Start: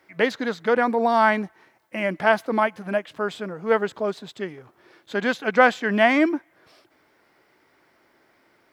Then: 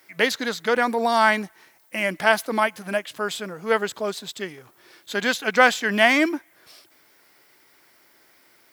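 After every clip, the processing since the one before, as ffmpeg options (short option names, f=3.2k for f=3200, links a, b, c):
-af "crystalizer=i=5.5:c=0,volume=-2.5dB"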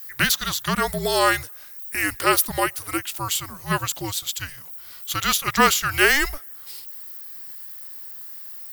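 -af "aemphasis=mode=production:type=riaa,afreqshift=-290,volume=-1.5dB"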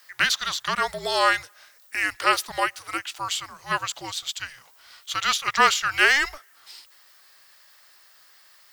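-filter_complex "[0:a]acrossover=split=510 7100:gain=0.2 1 0.1[a][b][c];[a][b][c]amix=inputs=3:normalize=0"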